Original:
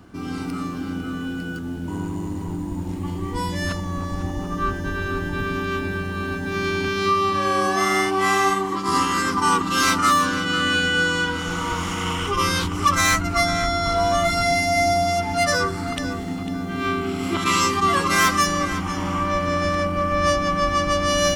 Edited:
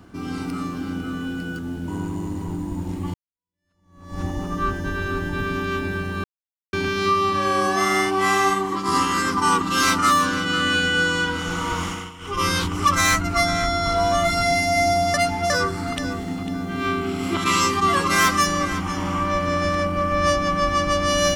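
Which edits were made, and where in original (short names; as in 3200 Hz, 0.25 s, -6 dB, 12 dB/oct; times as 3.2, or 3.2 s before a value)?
3.14–4.2 fade in exponential
6.24–6.73 mute
11.84–12.46 dip -16 dB, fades 0.27 s
15.14–15.5 reverse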